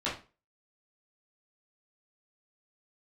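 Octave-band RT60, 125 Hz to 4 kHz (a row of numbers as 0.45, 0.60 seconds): 0.35, 0.35, 0.35, 0.30, 0.30, 0.30 seconds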